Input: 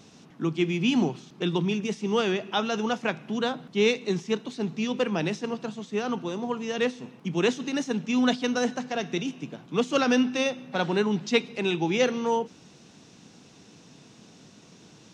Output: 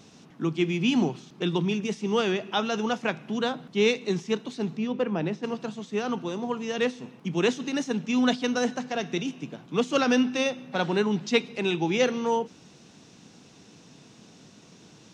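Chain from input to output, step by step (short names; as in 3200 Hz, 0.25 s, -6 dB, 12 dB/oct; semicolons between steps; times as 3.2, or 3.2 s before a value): 4.77–5.43 LPF 1300 Hz 6 dB/oct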